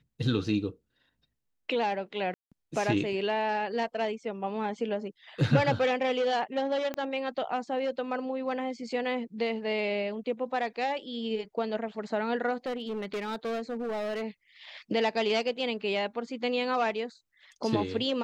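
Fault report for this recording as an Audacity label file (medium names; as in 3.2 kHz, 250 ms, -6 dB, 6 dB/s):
2.340000	2.520000	dropout 176 ms
6.940000	6.940000	pop -20 dBFS
12.660000	14.230000	clipped -29.5 dBFS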